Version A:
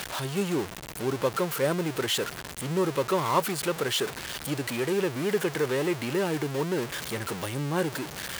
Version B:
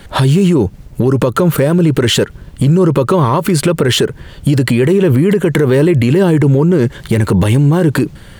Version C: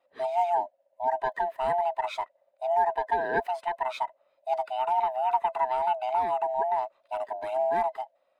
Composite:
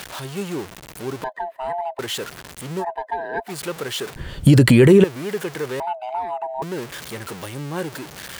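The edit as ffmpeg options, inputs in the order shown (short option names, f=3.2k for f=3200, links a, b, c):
-filter_complex "[2:a]asplit=3[a][b][c];[0:a]asplit=5[d][e][f][g][h];[d]atrim=end=1.242[i];[a]atrim=start=1.238:end=1.992[j];[e]atrim=start=1.988:end=2.85[k];[b]atrim=start=2.79:end=3.52[l];[f]atrim=start=3.46:end=4.162[m];[1:a]atrim=start=4.158:end=5.042[n];[g]atrim=start=5.038:end=5.802[o];[c]atrim=start=5.798:end=6.622[p];[h]atrim=start=6.618[q];[i][j]acrossfade=d=0.004:c1=hsin:c2=hsin[r];[r][k]acrossfade=d=0.004:c1=hsin:c2=hsin[s];[s][l]acrossfade=d=0.06:c1=tri:c2=tri[t];[t][m]acrossfade=d=0.06:c1=tri:c2=tri[u];[u][n]acrossfade=d=0.004:c1=hsin:c2=hsin[v];[v][o]acrossfade=d=0.004:c1=hsin:c2=hsin[w];[w][p]acrossfade=d=0.004:c1=hsin:c2=hsin[x];[x][q]acrossfade=d=0.004:c1=hsin:c2=hsin"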